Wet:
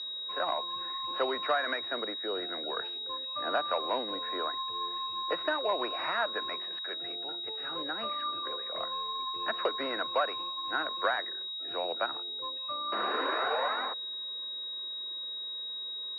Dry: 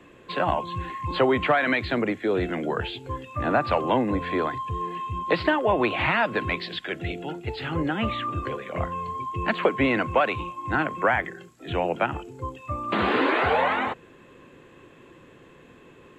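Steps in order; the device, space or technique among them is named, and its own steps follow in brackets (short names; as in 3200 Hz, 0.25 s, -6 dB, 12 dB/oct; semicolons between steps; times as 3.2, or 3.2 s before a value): toy sound module (decimation joined by straight lines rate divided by 4×; pulse-width modulation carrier 3800 Hz; speaker cabinet 690–4900 Hz, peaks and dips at 850 Hz -8 dB, 2200 Hz -5 dB, 3300 Hz -7 dB); gain -2 dB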